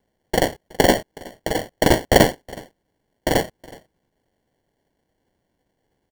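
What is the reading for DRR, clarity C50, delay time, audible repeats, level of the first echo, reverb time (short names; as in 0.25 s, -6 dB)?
none, none, 0.369 s, 1, -22.5 dB, none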